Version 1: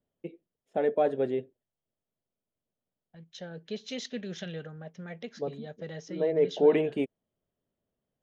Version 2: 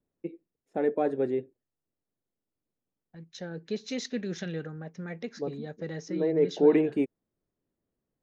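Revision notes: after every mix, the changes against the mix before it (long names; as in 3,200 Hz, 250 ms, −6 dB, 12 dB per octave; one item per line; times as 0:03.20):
second voice +3.5 dB
master: add thirty-one-band graphic EQ 315 Hz +7 dB, 630 Hz −6 dB, 3,150 Hz −11 dB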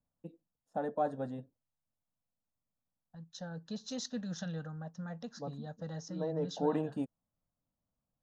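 master: add phaser with its sweep stopped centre 920 Hz, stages 4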